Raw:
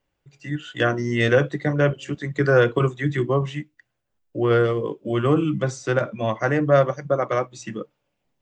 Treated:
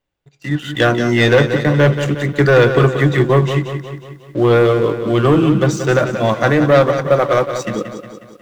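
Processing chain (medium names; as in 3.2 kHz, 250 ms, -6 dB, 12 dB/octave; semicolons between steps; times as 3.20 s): waveshaping leveller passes 2; peaking EQ 3.7 kHz +5 dB 0.22 oct; bit-crushed delay 181 ms, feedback 55%, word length 9-bit, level -9 dB; trim +1.5 dB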